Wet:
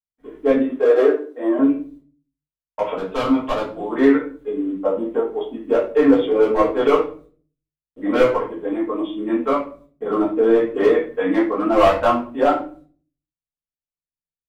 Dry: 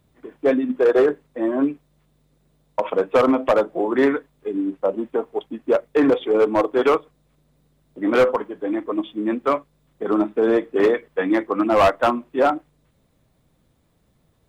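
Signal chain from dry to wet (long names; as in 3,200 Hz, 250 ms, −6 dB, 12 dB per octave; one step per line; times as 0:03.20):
0:00.56–0:01.59: Butterworth high-pass 260 Hz
noise gate −53 dBFS, range −47 dB
0:02.94–0:03.91: octave-band graphic EQ 500/2,000/4,000 Hz −10/−5/+6 dB
rectangular room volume 31 cubic metres, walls mixed, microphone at 1.4 metres
level −8.5 dB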